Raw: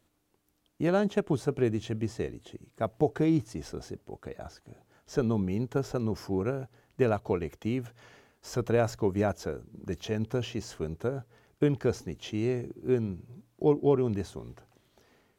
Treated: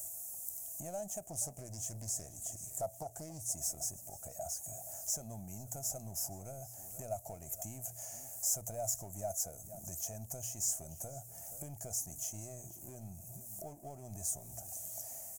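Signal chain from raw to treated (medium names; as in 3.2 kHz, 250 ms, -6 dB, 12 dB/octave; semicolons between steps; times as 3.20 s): tilt EQ +2.5 dB/octave; power-law waveshaper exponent 0.7; hum notches 60/120 Hz; delay 475 ms -20.5 dB; compression 2:1, threshold -48 dBFS, peak gain reduction 15 dB; FFT filter 110 Hz 0 dB, 440 Hz -22 dB, 660 Hz +5 dB, 1.1 kHz -22 dB, 2.4 kHz -19 dB, 3.8 kHz -25 dB, 6.8 kHz +11 dB; 1.27–3.54 s: loudspeaker Doppler distortion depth 0.31 ms; trim +2 dB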